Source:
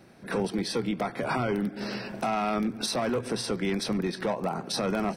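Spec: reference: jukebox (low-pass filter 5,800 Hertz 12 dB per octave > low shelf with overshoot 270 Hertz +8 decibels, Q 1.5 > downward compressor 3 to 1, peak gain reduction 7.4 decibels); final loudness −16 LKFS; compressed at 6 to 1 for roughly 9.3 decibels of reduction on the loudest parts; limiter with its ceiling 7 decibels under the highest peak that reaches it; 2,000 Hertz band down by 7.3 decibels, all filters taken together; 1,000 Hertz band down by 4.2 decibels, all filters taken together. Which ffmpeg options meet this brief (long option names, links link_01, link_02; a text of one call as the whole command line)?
ffmpeg -i in.wav -af "equalizer=frequency=1000:width_type=o:gain=-3,equalizer=frequency=2000:width_type=o:gain=-8.5,acompressor=threshold=-35dB:ratio=6,alimiter=level_in=7.5dB:limit=-24dB:level=0:latency=1,volume=-7.5dB,lowpass=5800,lowshelf=frequency=270:width_type=q:width=1.5:gain=8,acompressor=threshold=-36dB:ratio=3,volume=23.5dB" out.wav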